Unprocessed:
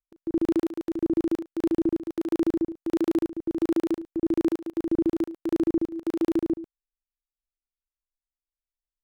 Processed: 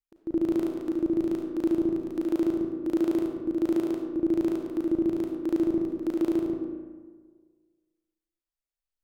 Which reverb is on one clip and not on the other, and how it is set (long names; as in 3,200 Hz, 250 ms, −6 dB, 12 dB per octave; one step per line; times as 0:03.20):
comb and all-pass reverb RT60 1.6 s, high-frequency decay 0.5×, pre-delay 10 ms, DRR 3.5 dB
level −2.5 dB